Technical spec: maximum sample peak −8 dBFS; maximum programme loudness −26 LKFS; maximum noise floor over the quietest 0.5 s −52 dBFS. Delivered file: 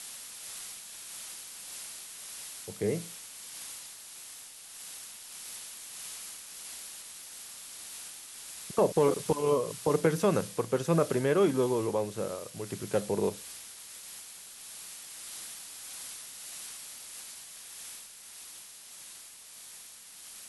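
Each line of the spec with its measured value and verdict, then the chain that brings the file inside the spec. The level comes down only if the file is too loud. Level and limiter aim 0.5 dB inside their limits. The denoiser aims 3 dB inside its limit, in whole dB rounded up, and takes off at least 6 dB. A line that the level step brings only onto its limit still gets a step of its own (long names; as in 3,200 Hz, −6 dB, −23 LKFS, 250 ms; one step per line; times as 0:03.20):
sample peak −11.5 dBFS: in spec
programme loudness −34.0 LKFS: in spec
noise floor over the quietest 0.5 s −49 dBFS: out of spec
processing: broadband denoise 6 dB, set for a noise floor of −49 dBFS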